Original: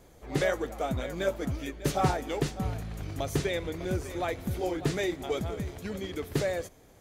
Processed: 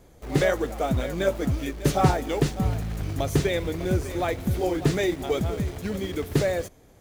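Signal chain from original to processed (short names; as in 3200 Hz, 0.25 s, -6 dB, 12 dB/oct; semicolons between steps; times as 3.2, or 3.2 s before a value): low shelf 370 Hz +4 dB; in parallel at -5 dB: bit-crush 7-bit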